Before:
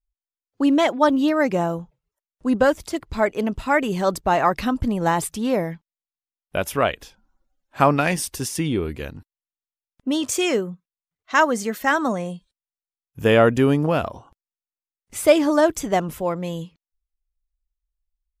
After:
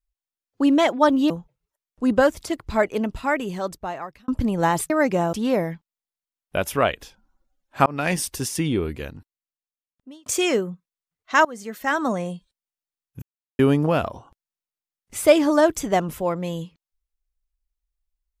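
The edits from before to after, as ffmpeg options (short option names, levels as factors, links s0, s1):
-filter_complex "[0:a]asplit=10[s0][s1][s2][s3][s4][s5][s6][s7][s8][s9];[s0]atrim=end=1.302[s10];[s1]atrim=start=1.728:end=4.71,asetpts=PTS-STARTPTS,afade=t=out:st=1.552:d=1.43[s11];[s2]atrim=start=4.71:end=5.332,asetpts=PTS-STARTPTS,afade=t=in:d=0.004:c=hsin[s12];[s3]atrim=start=1.298:end=1.732[s13];[s4]atrim=start=5.328:end=7.86,asetpts=PTS-STARTPTS,afade=t=out:st=2.528:d=0.004:c=hsin[s14];[s5]atrim=start=7.86:end=10.26,asetpts=PTS-STARTPTS,afade=t=in:d=0.27,afade=t=out:st=0.98:d=1.42[s15];[s6]atrim=start=10.26:end=11.45,asetpts=PTS-STARTPTS,afade=t=in:d=0.004:c=hsin,afade=t=out:st=1.186:d=0.004:c=hsin:silence=0.11885[s16];[s7]atrim=start=11.45:end=13.22,asetpts=PTS-STARTPTS,afade=t=in:d=0.71:silence=0.11885,afade=t=out:st=1.766:d=0.004:c=hsin[s17];[s8]atrim=start=13.22:end=13.59,asetpts=PTS-STARTPTS,volume=0[s18];[s9]atrim=start=13.59,asetpts=PTS-STARTPTS,afade=t=in:d=0.004:c=hsin[s19];[s11][s12]concat=n=2:v=0:a=1[s20];[s10][s20]acrossfade=d=0.004:c1=hsin:c2=hsin[s21];[s21][s13]acrossfade=d=0.004:c1=hsin:c2=hsin[s22];[s14][s15][s16][s17][s18][s19]concat=n=6:v=0:a=1[s23];[s22][s23]acrossfade=d=0.004:c1=hsin:c2=hsin"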